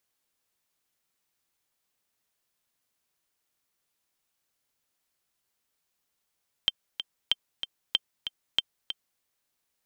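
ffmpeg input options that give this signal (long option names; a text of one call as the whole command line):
ffmpeg -f lavfi -i "aevalsrc='pow(10,(-9-9.5*gte(mod(t,2*60/189),60/189))/20)*sin(2*PI*3150*mod(t,60/189))*exp(-6.91*mod(t,60/189)/0.03)':duration=2.53:sample_rate=44100" out.wav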